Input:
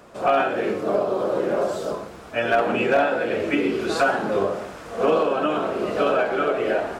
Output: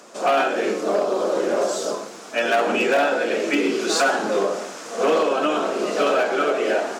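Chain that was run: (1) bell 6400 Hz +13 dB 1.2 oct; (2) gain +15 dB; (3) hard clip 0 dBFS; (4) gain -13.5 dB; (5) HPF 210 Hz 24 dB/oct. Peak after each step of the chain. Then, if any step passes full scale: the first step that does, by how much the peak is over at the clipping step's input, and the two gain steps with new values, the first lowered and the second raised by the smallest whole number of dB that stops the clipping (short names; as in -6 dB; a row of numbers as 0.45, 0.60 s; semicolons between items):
-8.5, +6.5, 0.0, -13.5, -7.5 dBFS; step 2, 6.5 dB; step 2 +8 dB, step 4 -6.5 dB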